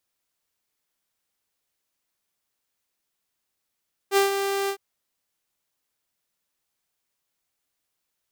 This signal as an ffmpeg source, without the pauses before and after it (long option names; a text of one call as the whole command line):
ffmpeg -f lavfi -i "aevalsrc='0.224*(2*mod(395*t,1)-1)':duration=0.659:sample_rate=44100,afade=type=in:duration=0.057,afade=type=out:start_time=0.057:duration=0.132:silence=0.398,afade=type=out:start_time=0.58:duration=0.079" out.wav